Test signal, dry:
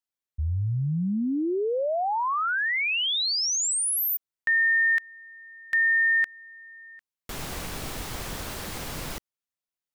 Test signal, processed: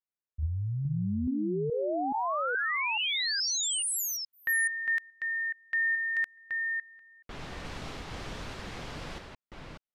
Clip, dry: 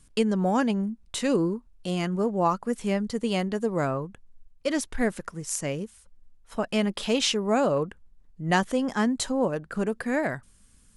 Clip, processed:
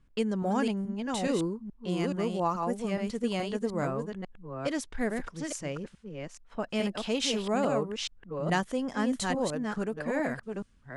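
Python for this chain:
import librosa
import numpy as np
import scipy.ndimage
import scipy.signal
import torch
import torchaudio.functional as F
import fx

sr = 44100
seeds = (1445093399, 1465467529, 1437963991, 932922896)

y = fx.reverse_delay(x, sr, ms=425, wet_db=-4.0)
y = fx.env_lowpass(y, sr, base_hz=2300.0, full_db=-20.0)
y = y * librosa.db_to_amplitude(-5.5)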